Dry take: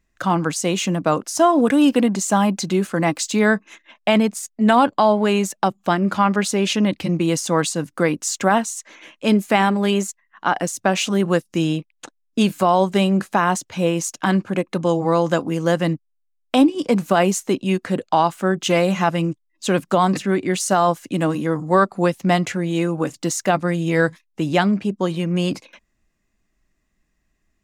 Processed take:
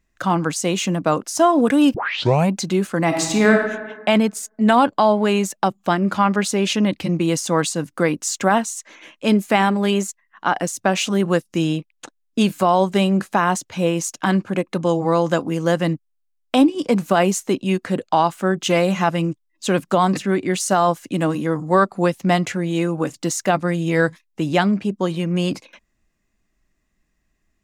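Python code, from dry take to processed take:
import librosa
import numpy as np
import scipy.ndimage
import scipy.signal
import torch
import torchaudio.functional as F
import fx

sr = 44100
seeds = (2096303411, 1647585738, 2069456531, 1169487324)

y = fx.reverb_throw(x, sr, start_s=3.06, length_s=0.46, rt60_s=1.3, drr_db=1.0)
y = fx.edit(y, sr, fx.tape_start(start_s=1.94, length_s=0.58), tone=tone)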